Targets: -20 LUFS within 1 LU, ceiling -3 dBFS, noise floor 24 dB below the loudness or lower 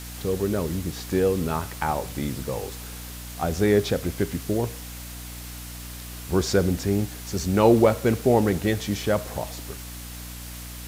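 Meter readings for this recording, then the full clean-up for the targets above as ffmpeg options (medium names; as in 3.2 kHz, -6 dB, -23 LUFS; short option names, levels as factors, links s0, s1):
hum 60 Hz; highest harmonic 300 Hz; hum level -37 dBFS; noise floor -38 dBFS; noise floor target -49 dBFS; loudness -24.5 LUFS; peak level -5.0 dBFS; loudness target -20.0 LUFS
-> -af "bandreject=f=60:t=h:w=6,bandreject=f=120:t=h:w=6,bandreject=f=180:t=h:w=6,bandreject=f=240:t=h:w=6,bandreject=f=300:t=h:w=6"
-af "afftdn=nr=11:nf=-38"
-af "volume=1.68,alimiter=limit=0.708:level=0:latency=1"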